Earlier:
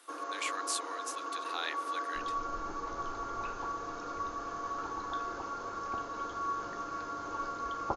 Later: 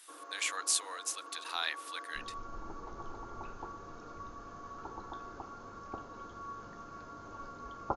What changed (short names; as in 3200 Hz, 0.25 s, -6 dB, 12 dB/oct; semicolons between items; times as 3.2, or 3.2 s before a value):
speech: add high shelf 3800 Hz +7 dB; first sound -10.0 dB